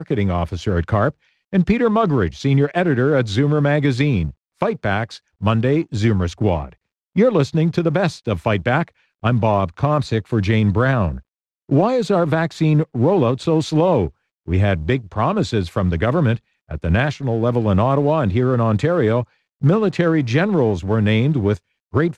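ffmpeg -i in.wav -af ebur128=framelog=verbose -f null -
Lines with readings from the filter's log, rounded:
Integrated loudness:
  I:         -18.7 LUFS
  Threshold: -28.9 LUFS
Loudness range:
  LRA:         2.0 LU
  Threshold: -38.8 LUFS
  LRA low:   -19.8 LUFS
  LRA high:  -17.9 LUFS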